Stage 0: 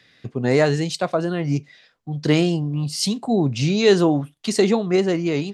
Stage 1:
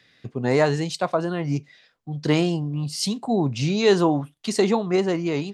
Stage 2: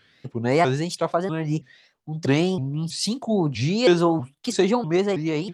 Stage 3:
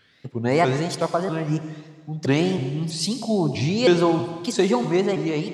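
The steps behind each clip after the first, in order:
dynamic equaliser 960 Hz, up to +7 dB, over −39 dBFS, Q 2.1; level −3 dB
pitch modulation by a square or saw wave saw up 3.1 Hz, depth 250 cents
convolution reverb RT60 1.5 s, pre-delay 72 ms, DRR 9 dB

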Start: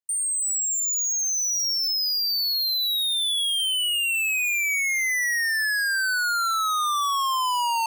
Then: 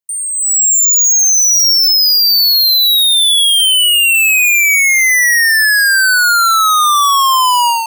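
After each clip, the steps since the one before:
high-shelf EQ 9,300 Hz +5.5 dB
automatic gain control gain up to 11 dB
level +2.5 dB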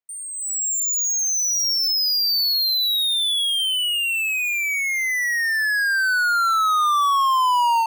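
bass and treble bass −7 dB, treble −14 dB
brickwall limiter −14.5 dBFS, peak gain reduction 5.5 dB
dynamic equaliser 2,200 Hz, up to −6 dB, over −32 dBFS, Q 1.2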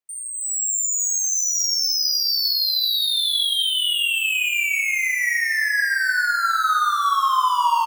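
downward compressor, threshold −21 dBFS, peak gain reduction 4 dB
multi-tap delay 48/573 ms −6.5/−8.5 dB
on a send at −5 dB: convolution reverb RT60 2.6 s, pre-delay 5 ms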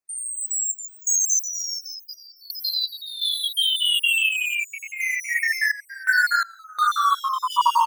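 time-frequency cells dropped at random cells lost 28%
sample-and-hold tremolo 2.8 Hz, depth 95%
level +2.5 dB

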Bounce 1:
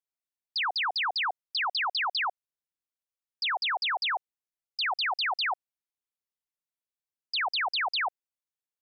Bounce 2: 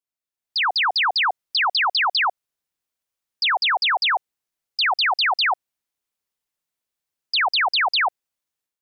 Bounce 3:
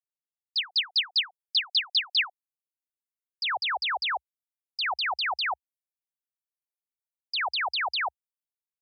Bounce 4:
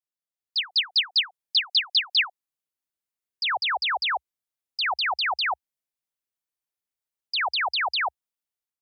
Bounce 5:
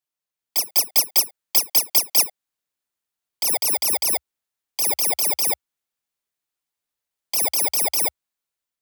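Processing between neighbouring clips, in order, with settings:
automatic gain control gain up to 9 dB
spectral dynamics exaggerated over time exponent 2; high-pass filter sweep 3,400 Hz → 69 Hz, 0:02.10–0:03.78; level −7 dB
automatic gain control gain up to 6 dB; level −3 dB
samples in bit-reversed order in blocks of 32 samples; level +4.5 dB

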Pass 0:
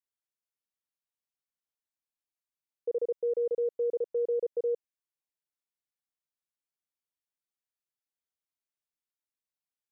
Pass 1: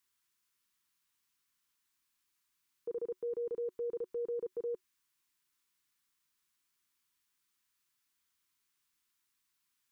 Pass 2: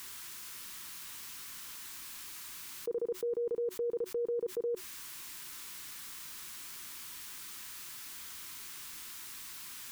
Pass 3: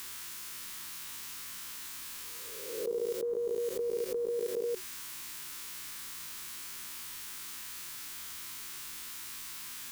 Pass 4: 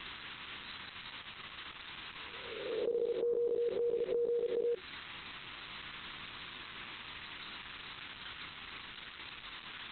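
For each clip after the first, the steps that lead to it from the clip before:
drawn EQ curve 370 Hz 0 dB, 620 Hz −19 dB, 1,000 Hz +4 dB; brickwall limiter −42 dBFS, peak gain reduction 9 dB; level +9.5 dB
envelope flattener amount 70%; level +3 dB
peak hold with a rise ahead of every peak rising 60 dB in 1.08 s
downward compressor 5 to 1, threshold −38 dBFS, peak gain reduction 7.5 dB; level +7 dB; Opus 8 kbit/s 48,000 Hz

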